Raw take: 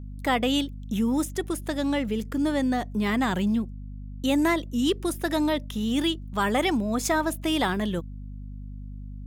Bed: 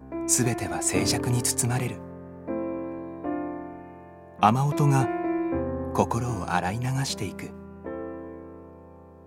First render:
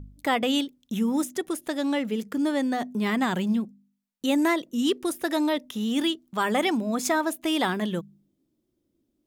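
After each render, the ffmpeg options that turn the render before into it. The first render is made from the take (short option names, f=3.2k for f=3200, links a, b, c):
-af "bandreject=f=50:t=h:w=4,bandreject=f=100:t=h:w=4,bandreject=f=150:t=h:w=4,bandreject=f=200:t=h:w=4,bandreject=f=250:t=h:w=4"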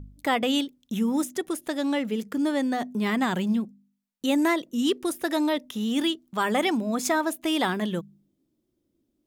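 -af anull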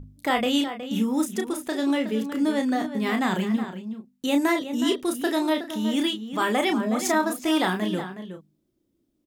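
-filter_complex "[0:a]asplit=2[a][b];[b]adelay=32,volume=-5.5dB[c];[a][c]amix=inputs=2:normalize=0,asplit=2[d][e];[e]adelay=367.3,volume=-10dB,highshelf=f=4k:g=-8.27[f];[d][f]amix=inputs=2:normalize=0"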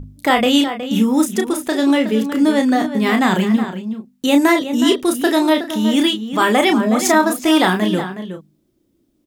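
-af "volume=9dB,alimiter=limit=-2dB:level=0:latency=1"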